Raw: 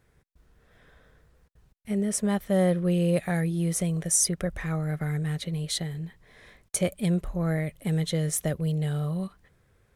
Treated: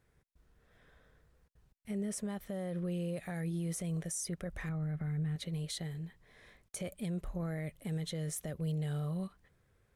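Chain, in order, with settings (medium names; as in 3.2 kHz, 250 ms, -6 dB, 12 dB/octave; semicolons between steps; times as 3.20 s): 4.69–5.36 s: tone controls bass +8 dB, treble -9 dB; peak limiter -23 dBFS, peak gain reduction 11.5 dB; trim -7 dB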